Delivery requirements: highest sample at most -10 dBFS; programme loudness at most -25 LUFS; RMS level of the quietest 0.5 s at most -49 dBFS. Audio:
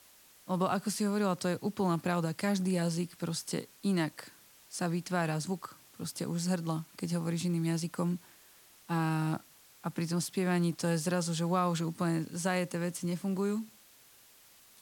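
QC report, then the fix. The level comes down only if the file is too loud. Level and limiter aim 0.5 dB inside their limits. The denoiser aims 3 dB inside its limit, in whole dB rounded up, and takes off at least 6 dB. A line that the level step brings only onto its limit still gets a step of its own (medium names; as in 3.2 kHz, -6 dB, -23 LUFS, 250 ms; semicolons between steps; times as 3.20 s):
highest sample -16.5 dBFS: pass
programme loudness -33.0 LUFS: pass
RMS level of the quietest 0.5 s -60 dBFS: pass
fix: none needed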